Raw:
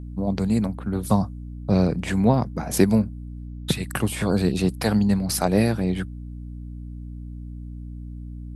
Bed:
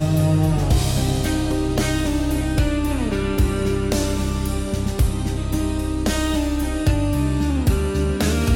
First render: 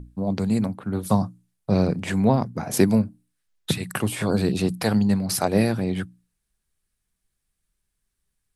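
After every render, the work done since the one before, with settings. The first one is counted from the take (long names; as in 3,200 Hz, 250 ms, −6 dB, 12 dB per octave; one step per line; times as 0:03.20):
mains-hum notches 60/120/180/240/300 Hz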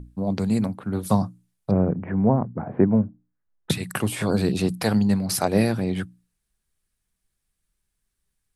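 0:01.71–0:03.70: Bessel low-pass filter 1,100 Hz, order 8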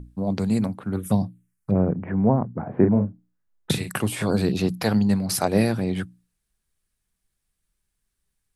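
0:00.96–0:01.75: phaser swept by the level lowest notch 550 Hz, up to 1,300 Hz, full sweep at −19 dBFS
0:02.74–0:03.90: double-tracking delay 39 ms −6 dB
0:04.45–0:05.07: parametric band 8,800 Hz −12.5 dB 0.27 octaves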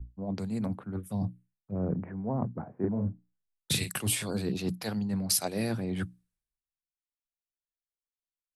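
reversed playback
downward compressor 6 to 1, threshold −29 dBFS, peak gain reduction 16.5 dB
reversed playback
multiband upward and downward expander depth 100%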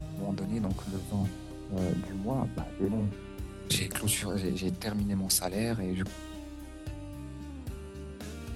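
mix in bed −22 dB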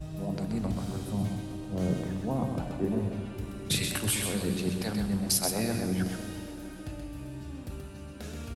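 on a send: single-tap delay 129 ms −5.5 dB
on the sum: dense smooth reverb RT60 4.3 s, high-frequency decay 0.75×, DRR 8.5 dB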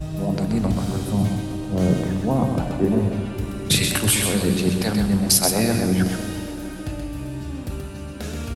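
level +10 dB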